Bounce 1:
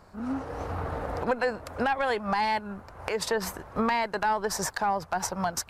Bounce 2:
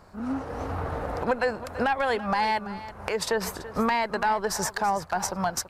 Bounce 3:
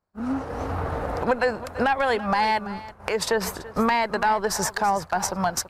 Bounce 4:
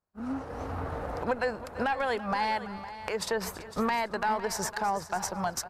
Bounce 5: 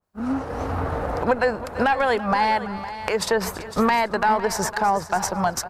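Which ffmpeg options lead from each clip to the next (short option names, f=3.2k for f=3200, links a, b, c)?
-af "aecho=1:1:333:0.178,volume=1.5dB"
-af "agate=range=-33dB:threshold=-34dB:ratio=3:detection=peak,volume=3dB"
-af "aecho=1:1:506:0.2,volume=-7dB"
-af "adynamicequalizer=threshold=0.00794:dfrequency=2100:dqfactor=0.7:tfrequency=2100:tqfactor=0.7:attack=5:release=100:ratio=0.375:range=2:mode=cutabove:tftype=highshelf,volume=9dB"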